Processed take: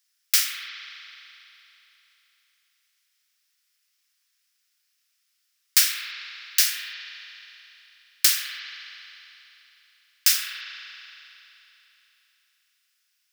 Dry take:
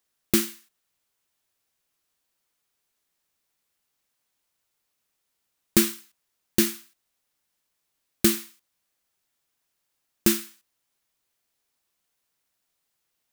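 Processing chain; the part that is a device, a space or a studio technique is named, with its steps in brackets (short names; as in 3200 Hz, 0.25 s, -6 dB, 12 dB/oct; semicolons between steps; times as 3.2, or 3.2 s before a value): headphones lying on a table (HPF 1500 Hz 24 dB/oct; bell 5200 Hz +8 dB 0.39 oct); spring tank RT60 3.4 s, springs 36 ms, chirp 35 ms, DRR 0.5 dB; gain +4 dB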